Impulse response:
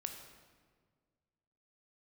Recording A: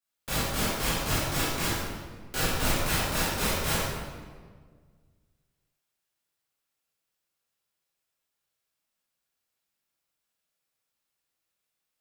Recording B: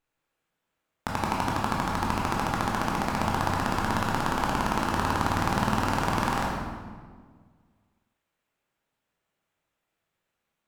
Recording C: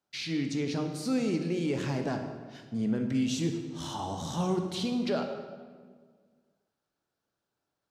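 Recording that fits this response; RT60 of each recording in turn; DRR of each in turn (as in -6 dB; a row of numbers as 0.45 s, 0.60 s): C; 1.7 s, 1.7 s, 1.7 s; -10.5 dB, -3.5 dB, 4.5 dB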